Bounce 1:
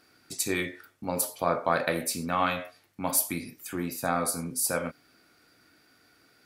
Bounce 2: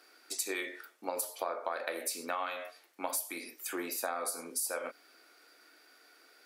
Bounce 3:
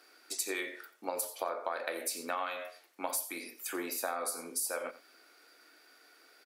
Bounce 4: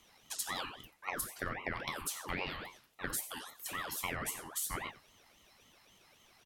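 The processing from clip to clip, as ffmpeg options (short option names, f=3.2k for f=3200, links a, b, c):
-af "highpass=f=360:w=0.5412,highpass=f=360:w=1.3066,acompressor=threshold=-33dB:ratio=10,volume=1.5dB"
-af "aecho=1:1:89:0.158"
-af "afreqshift=-15,aeval=exprs='val(0)*sin(2*PI*1100*n/s+1100*0.5/3.7*sin(2*PI*3.7*n/s))':c=same"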